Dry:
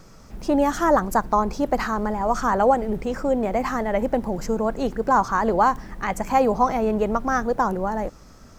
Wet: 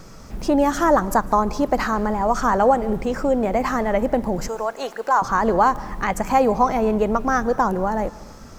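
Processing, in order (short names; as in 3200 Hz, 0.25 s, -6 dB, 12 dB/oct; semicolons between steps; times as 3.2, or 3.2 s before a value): 4.48–5.22 HPF 700 Hz 12 dB/oct; in parallel at -0.5 dB: compressor, threshold -29 dBFS, peak gain reduction 15.5 dB; on the sum: reverb, pre-delay 0.137 s, DRR 19 dB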